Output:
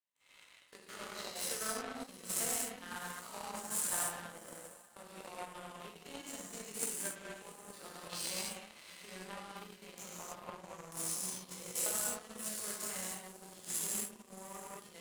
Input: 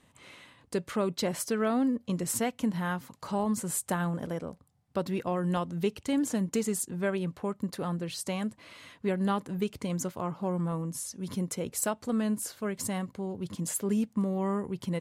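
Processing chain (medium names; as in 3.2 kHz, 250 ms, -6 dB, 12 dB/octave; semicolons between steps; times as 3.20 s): spectrogram pixelated in time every 50 ms; compression 3:1, threshold -38 dBFS, peak gain reduction 10.5 dB; high-pass 1.4 kHz 6 dB/octave; echo that smears into a reverb 733 ms, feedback 45%, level -11 dB; gated-style reverb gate 330 ms flat, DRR -7.5 dB; power-law waveshaper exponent 2; trim +8.5 dB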